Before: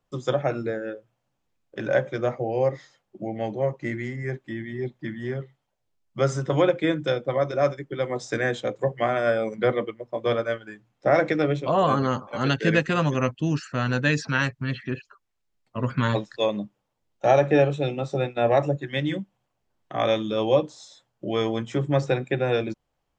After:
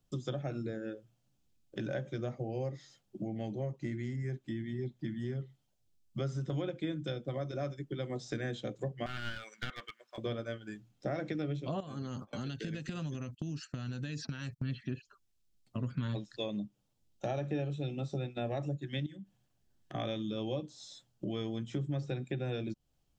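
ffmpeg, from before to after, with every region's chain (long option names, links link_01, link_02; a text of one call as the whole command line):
ffmpeg -i in.wav -filter_complex "[0:a]asettb=1/sr,asplit=3[link_01][link_02][link_03];[link_01]atrim=end=9.064[link_04];[link_02]atrim=start=9.06:end=10.18,asetpts=PTS-STARTPTS,afade=type=in:duration=0.004:curve=qsin,afade=type=out:start_time=1.116:duration=0.004:curve=qsin,highpass=frequency=1500:width_type=q:width=2.4,bandreject=frequency=2000:width=15,aeval=exprs='clip(val(0),-1,0.0266)':channel_layout=same[link_05];[link_03]atrim=start=10.176[link_06];[link_04][link_05]acrossfade=duration=0.004:curve1=hsin:curve2=qsin[link_07];[link_07][link_06]acrossfade=duration=0.004:curve1=qsin:curve2=hsin,asettb=1/sr,asplit=3[link_08][link_09][link_10];[link_08]atrim=end=11.804[link_11];[link_09]atrim=start=11.8:end=14.62,asetpts=PTS-STARTPTS,afade=type=in:duration=0.004:curve=qsin,afade=type=out:start_time=2.816:duration=0.004:curve=qsin,agate=range=-16dB:threshold=-41dB:ratio=16:release=100:detection=peak,highshelf=frequency=6700:gain=7,acompressor=threshold=-30dB:ratio=12:attack=3.2:release=140:knee=1:detection=peak[link_12];[link_10]atrim=start=14.616[link_13];[link_11][link_12]acrossfade=duration=0.004:curve1=hsin:curve2=qsin[link_14];[link_14][link_13]acrossfade=duration=0.004:curve1=qsin:curve2=hsin,asettb=1/sr,asplit=3[link_15][link_16][link_17];[link_15]atrim=end=19.064[link_18];[link_16]atrim=start=19.06:end=19.95,asetpts=PTS-STARTPTS,afade=type=in:duration=0.004:curve=qsin,afade=type=out:start_time=0.886:duration=0.004:curve=qsin,acompressor=threshold=-39dB:ratio=8:attack=3.2:release=140:knee=1:detection=peak,equalizer=frequency=1700:width=4.9:gain=7[link_19];[link_17]atrim=start=19.946[link_20];[link_18][link_19]acrossfade=duration=0.004:curve1=hsin:curve2=qsin[link_21];[link_21][link_20]acrossfade=duration=0.004:curve1=qsin:curve2=hsin,acrossover=split=4500[link_22][link_23];[link_23]acompressor=threshold=-56dB:ratio=4:attack=1:release=60[link_24];[link_22][link_24]amix=inputs=2:normalize=0,equalizer=frequency=500:width_type=o:width=1:gain=-8,equalizer=frequency=1000:width_type=o:width=1:gain=-11,equalizer=frequency=2000:width_type=o:width=1:gain=-9,acompressor=threshold=-40dB:ratio=3,volume=3.5dB" out.wav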